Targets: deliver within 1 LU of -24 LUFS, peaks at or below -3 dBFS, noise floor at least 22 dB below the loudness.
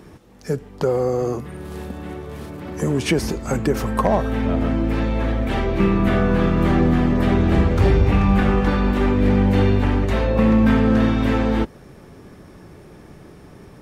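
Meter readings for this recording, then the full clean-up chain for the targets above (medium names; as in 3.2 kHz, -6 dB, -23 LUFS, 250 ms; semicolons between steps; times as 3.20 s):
clipped samples 0.8%; clipping level -8.5 dBFS; loudness -19.0 LUFS; peak level -8.5 dBFS; loudness target -24.0 LUFS
-> clip repair -8.5 dBFS; trim -5 dB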